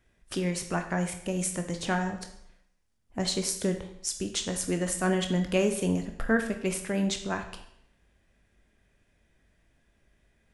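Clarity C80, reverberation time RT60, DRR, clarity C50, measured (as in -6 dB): 12.5 dB, 0.70 s, 5.5 dB, 9.0 dB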